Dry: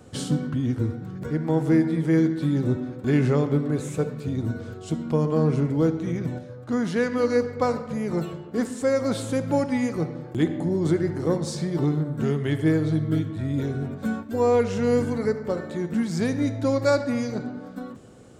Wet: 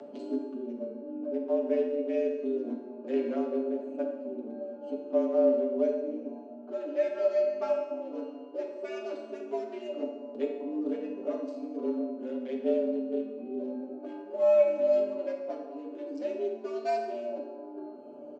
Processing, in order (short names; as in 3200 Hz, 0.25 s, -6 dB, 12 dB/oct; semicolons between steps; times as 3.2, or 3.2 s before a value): Wiener smoothing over 25 samples; comb 6.6 ms, depth 92%; upward compressor, threshold -22 dBFS; frequency shift +91 Hz; speaker cabinet 160–6600 Hz, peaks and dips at 240 Hz +3 dB, 590 Hz +8 dB, 2800 Hz +6 dB; resonator 280 Hz, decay 1.1 s, mix 80%; plate-style reverb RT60 1.1 s, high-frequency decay 0.75×, DRR 2 dB; frequency shift +24 Hz; gain -4.5 dB